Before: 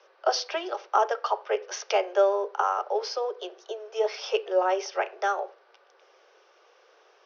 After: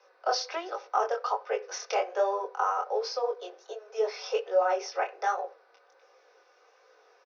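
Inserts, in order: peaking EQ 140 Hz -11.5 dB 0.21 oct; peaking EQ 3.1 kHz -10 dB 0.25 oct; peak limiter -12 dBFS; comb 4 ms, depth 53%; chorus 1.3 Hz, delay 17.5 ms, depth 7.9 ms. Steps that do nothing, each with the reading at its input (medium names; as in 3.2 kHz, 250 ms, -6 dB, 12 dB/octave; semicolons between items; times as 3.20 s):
peaking EQ 140 Hz: input has nothing below 340 Hz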